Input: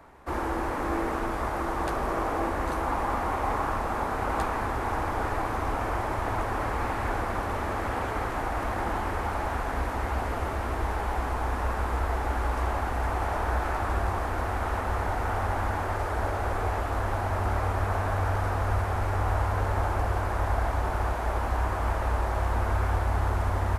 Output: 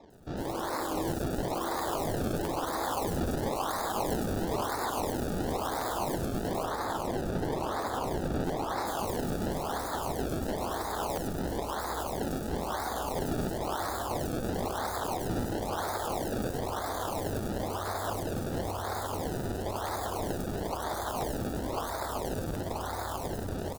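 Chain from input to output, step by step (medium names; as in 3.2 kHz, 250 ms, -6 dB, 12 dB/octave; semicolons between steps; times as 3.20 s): peak limiter -24.5 dBFS, peak gain reduction 10 dB; high-pass 380 Hz 6 dB/octave; decimation with a swept rate 29×, swing 100% 0.99 Hz; peaking EQ 2.3 kHz -12 dB 0.79 oct; level rider gain up to 4.5 dB; 6.55–8.77 s: treble shelf 5.3 kHz -7.5 dB; bands offset in time lows, highs 100 ms, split 5.5 kHz; crackling interface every 0.67 s, samples 512, repeat, from 0.43 s; warped record 45 rpm, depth 100 cents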